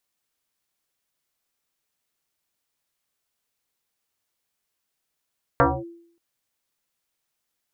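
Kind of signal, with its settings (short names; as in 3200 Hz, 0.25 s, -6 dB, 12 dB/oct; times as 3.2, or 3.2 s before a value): FM tone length 0.58 s, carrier 339 Hz, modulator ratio 0.61, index 5.9, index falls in 0.24 s linear, decay 0.63 s, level -11 dB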